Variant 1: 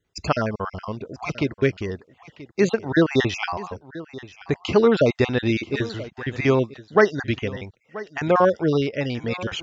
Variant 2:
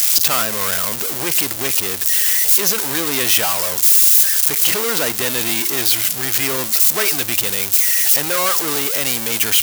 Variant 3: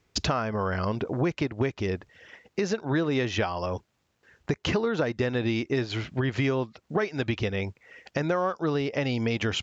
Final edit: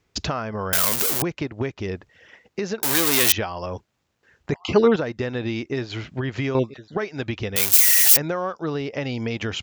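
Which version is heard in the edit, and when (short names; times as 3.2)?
3
0.73–1.22 from 2
2.83–3.32 from 2
4.52–4.96 from 1
6.55–6.97 from 1
7.56–8.17 from 2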